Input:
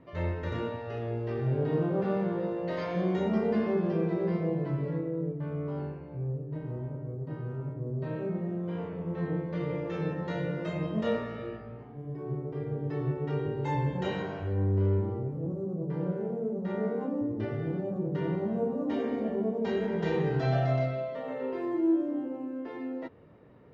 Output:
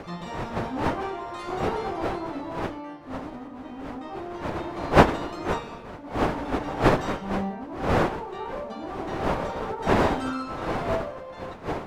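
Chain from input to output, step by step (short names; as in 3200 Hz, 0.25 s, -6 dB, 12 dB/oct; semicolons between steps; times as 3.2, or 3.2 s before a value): wind noise 400 Hz -25 dBFS; speed mistake 7.5 ips tape played at 15 ips; gain -3.5 dB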